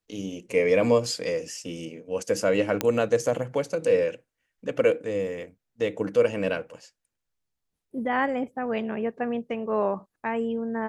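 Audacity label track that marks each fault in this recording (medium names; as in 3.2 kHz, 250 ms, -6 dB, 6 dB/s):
2.810000	2.810000	pop -8 dBFS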